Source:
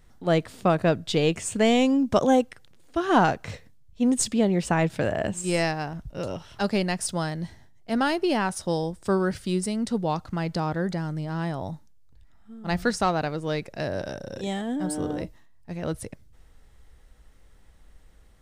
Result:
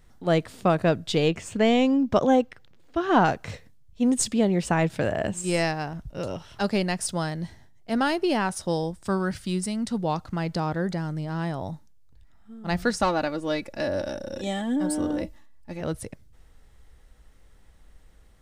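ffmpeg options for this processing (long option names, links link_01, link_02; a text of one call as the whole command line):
ffmpeg -i in.wav -filter_complex "[0:a]asettb=1/sr,asplit=3[link_01][link_02][link_03];[link_01]atrim=end=1.284[link_04];[link_02]atrim=start=1.28:end=3.26,asetpts=PTS-STARTPTS,afade=type=in:duration=0.004:curve=qsin,afade=type=out:start_time=1.976:duration=0.004:curve=qsin,equalizer=frequency=9900:width_type=o:width=1.2:gain=-12[link_05];[link_03]atrim=start=3.256[link_06];[link_04][link_05]acrossfade=duration=0.004:curve1=hsin:curve2=qsin[link_07];[link_07][link_06]acrossfade=duration=0.004:curve1=qsin:curve2=hsin,asettb=1/sr,asplit=3[link_08][link_09][link_10];[link_08]atrim=end=8.914[link_11];[link_09]atrim=start=8.91:end=9.99,asetpts=PTS-STARTPTS,afade=type=in:duration=0.004:curve=qsin,afade=type=out:start_time=1.076:duration=0.004:curve=qsin,equalizer=frequency=440:width_type=o:width=0.77:gain=-6.5[link_12];[link_10]atrim=start=9.986[link_13];[link_11][link_12]acrossfade=duration=0.004:curve1=hsin:curve2=qsin[link_14];[link_14][link_13]acrossfade=duration=0.004:curve1=qsin:curve2=hsin,asettb=1/sr,asplit=3[link_15][link_16][link_17];[link_15]atrim=end=13.004[link_18];[link_16]atrim=start=13:end=15.81,asetpts=PTS-STARTPTS,afade=type=in:duration=0.004:curve=qsin,afade=type=out:start_time=2.806:duration=0.004:curve=qsin,aecho=1:1:3.5:0.65,atrim=end_sample=123921[link_19];[link_17]atrim=start=15.806[link_20];[link_18][link_19]acrossfade=duration=0.004:curve1=hsin:curve2=qsin[link_21];[link_21][link_20]acrossfade=duration=0.004:curve1=qsin:curve2=hsin" out.wav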